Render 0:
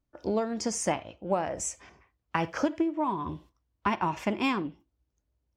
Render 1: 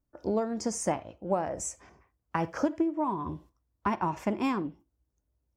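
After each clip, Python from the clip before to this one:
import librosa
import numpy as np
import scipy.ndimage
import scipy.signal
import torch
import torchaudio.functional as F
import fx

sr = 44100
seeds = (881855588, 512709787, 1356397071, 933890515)

y = fx.peak_eq(x, sr, hz=3100.0, db=-9.5, octaves=1.5)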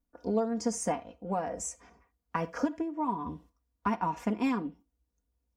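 y = x + 0.75 * np.pad(x, (int(4.2 * sr / 1000.0), 0))[:len(x)]
y = F.gain(torch.from_numpy(y), -3.5).numpy()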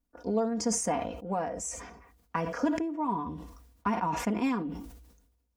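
y = fx.sustainer(x, sr, db_per_s=56.0)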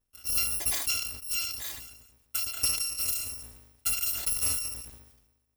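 y = fx.bit_reversed(x, sr, seeds[0], block=256)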